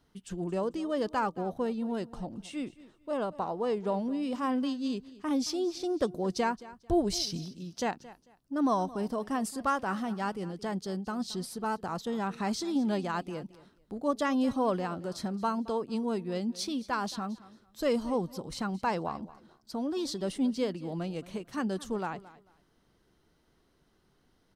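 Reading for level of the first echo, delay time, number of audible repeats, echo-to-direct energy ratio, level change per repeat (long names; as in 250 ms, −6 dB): −18.5 dB, 222 ms, 2, −18.5 dB, −13.0 dB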